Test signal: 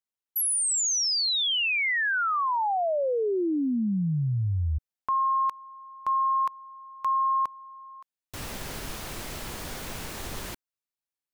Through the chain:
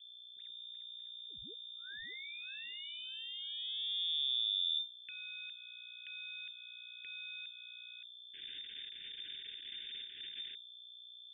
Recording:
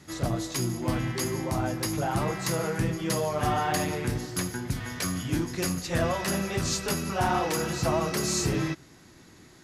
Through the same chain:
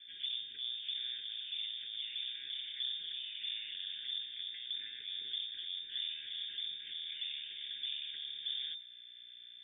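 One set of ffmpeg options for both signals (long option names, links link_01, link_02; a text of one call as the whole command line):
ffmpeg -i in.wav -filter_complex "[0:a]acrossover=split=200[link_01][link_02];[link_02]acompressor=threshold=-38dB:ratio=6:attack=2.9:release=184:detection=peak[link_03];[link_01][link_03]amix=inputs=2:normalize=0,aeval=exprs='max(val(0),0)':channel_layout=same,aeval=exprs='val(0)+0.00447*(sin(2*PI*60*n/s)+sin(2*PI*2*60*n/s)/2+sin(2*PI*3*60*n/s)/3+sin(2*PI*4*60*n/s)/4+sin(2*PI*5*60*n/s)/5)':channel_layout=same,lowpass=frequency=3100:width_type=q:width=0.5098,lowpass=frequency=3100:width_type=q:width=0.6013,lowpass=frequency=3100:width_type=q:width=0.9,lowpass=frequency=3100:width_type=q:width=2.563,afreqshift=-3600,asuperstop=centerf=840:order=20:qfactor=0.79,volume=-6dB" out.wav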